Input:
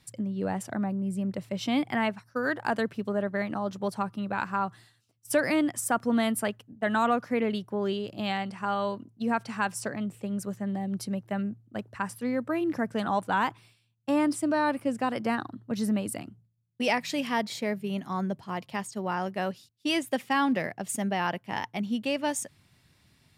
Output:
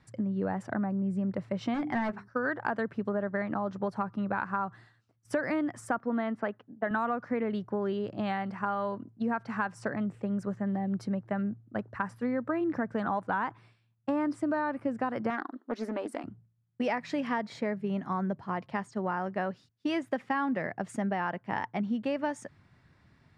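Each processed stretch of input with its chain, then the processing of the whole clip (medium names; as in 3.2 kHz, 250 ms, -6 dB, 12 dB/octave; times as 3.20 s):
1.74–2.28 s: hum notches 50/100/150/200/250/300/350/400/450 Hz + hard clipper -26 dBFS + doubling 13 ms -11.5 dB
5.99–6.91 s: high-pass 210 Hz + distance through air 220 m
15.30–16.24 s: brick-wall FIR high-pass 230 Hz + loudspeaker Doppler distortion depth 0.28 ms
whole clip: low-pass 5.3 kHz 12 dB/octave; resonant high shelf 2.2 kHz -8 dB, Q 1.5; compression 5:1, threshold -29 dBFS; trim +2 dB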